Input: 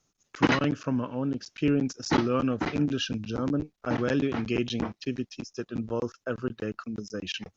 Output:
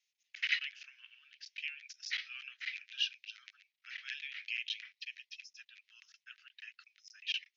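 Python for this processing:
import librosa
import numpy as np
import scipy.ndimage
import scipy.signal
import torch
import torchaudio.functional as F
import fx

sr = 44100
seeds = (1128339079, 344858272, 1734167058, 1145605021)

y = scipy.signal.sosfilt(scipy.signal.butter(8, 2000.0, 'highpass', fs=sr, output='sos'), x)
y = 10.0 ** (-11.5 / 20.0) * np.tanh(y / 10.0 ** (-11.5 / 20.0))
y = fx.air_absorb(y, sr, metres=230.0)
y = F.gain(torch.from_numpy(y), 3.5).numpy()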